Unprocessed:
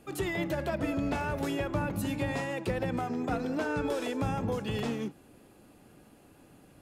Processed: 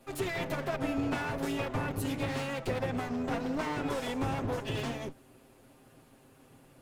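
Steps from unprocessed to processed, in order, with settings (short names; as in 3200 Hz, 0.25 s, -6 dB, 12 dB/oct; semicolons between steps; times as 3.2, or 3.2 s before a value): minimum comb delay 7.6 ms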